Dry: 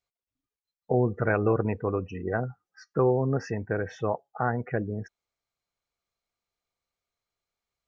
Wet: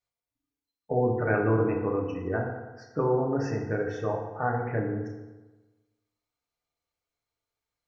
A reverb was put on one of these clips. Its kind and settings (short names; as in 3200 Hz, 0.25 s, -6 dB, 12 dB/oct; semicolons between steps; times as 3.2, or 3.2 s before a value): FDN reverb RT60 1.2 s, low-frequency decay 1×, high-frequency decay 0.6×, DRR -0.5 dB; gain -4 dB